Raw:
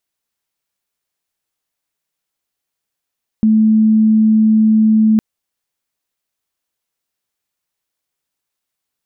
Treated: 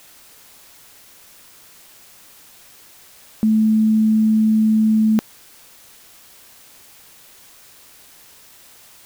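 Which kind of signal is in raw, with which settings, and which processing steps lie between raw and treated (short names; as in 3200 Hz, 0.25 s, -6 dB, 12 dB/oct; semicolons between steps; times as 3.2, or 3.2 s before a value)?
tone sine 218 Hz -7.5 dBFS 1.76 s
low shelf 250 Hz -11.5 dB; in parallel at -10.5 dB: requantised 6-bit, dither triangular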